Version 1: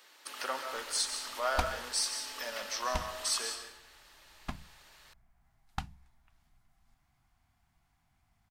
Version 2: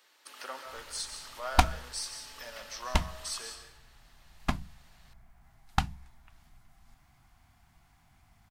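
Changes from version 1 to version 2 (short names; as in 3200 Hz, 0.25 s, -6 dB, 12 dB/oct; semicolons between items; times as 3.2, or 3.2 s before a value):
speech -5.5 dB; background +10.0 dB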